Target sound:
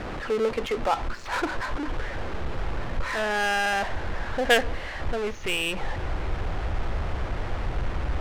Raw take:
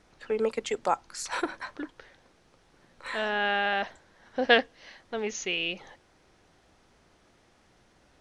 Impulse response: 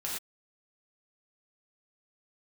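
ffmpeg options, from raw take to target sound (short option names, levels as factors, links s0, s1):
-af "aeval=exprs='val(0)+0.5*0.0531*sgn(val(0))':c=same,asubboost=boost=6:cutoff=85,adynamicsmooth=sensitivity=3:basefreq=760"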